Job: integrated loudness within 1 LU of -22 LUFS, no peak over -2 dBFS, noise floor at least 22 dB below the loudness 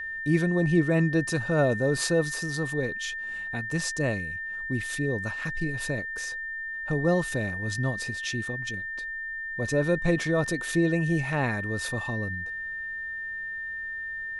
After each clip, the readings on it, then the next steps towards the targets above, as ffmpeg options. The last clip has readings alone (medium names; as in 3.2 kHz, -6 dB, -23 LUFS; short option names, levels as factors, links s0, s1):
steady tone 1.8 kHz; tone level -32 dBFS; loudness -28.0 LUFS; peak level -11.5 dBFS; loudness target -22.0 LUFS
-> -af "bandreject=f=1800:w=30"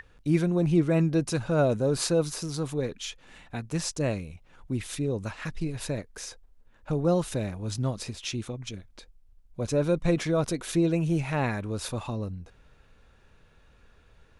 steady tone not found; loudness -28.5 LUFS; peak level -12.0 dBFS; loudness target -22.0 LUFS
-> -af "volume=2.11"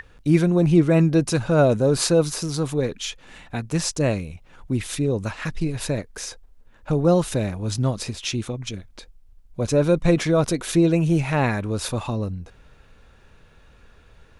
loudness -22.0 LUFS; peak level -5.5 dBFS; noise floor -52 dBFS